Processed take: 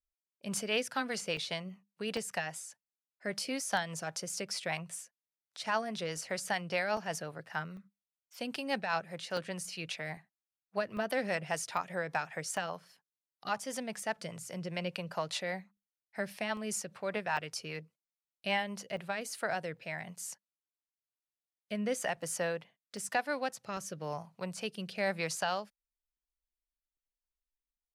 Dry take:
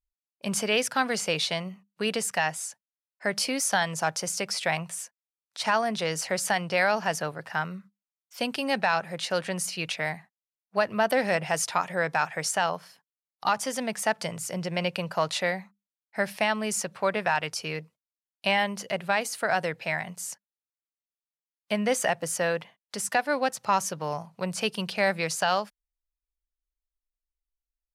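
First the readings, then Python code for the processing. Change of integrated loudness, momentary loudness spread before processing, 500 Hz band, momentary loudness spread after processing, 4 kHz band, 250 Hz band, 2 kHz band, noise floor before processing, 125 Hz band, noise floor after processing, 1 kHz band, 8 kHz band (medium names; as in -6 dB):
-8.5 dB, 9 LU, -8.5 dB, 10 LU, -8.5 dB, -7.5 dB, -9.0 dB, under -85 dBFS, -7.5 dB, under -85 dBFS, -9.5 dB, -9.0 dB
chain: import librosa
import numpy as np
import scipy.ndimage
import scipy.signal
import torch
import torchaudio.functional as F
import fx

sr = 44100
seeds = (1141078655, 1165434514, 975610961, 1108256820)

y = fx.rotary_switch(x, sr, hz=5.0, then_hz=1.0, switch_at_s=18.62)
y = fx.buffer_crackle(y, sr, first_s=0.57, period_s=0.8, block=64, kind='zero')
y = y * librosa.db_to_amplitude(-6.0)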